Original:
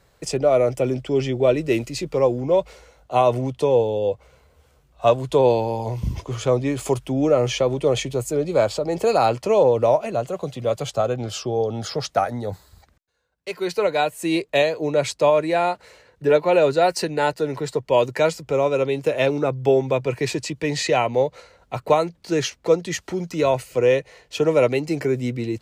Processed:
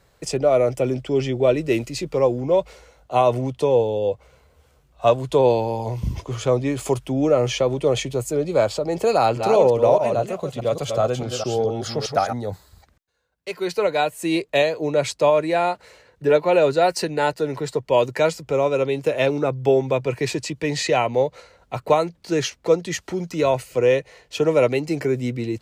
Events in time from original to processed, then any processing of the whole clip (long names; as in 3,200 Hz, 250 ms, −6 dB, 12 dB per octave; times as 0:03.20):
0:09.15–0:12.33: delay that plays each chunk backwards 208 ms, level −5.5 dB